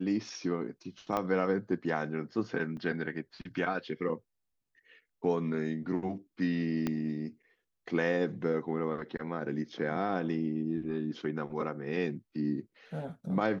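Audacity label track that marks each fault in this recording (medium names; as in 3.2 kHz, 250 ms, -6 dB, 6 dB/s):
1.170000	1.170000	pop -18 dBFS
2.770000	2.770000	dropout 3.7 ms
6.870000	6.870000	pop -18 dBFS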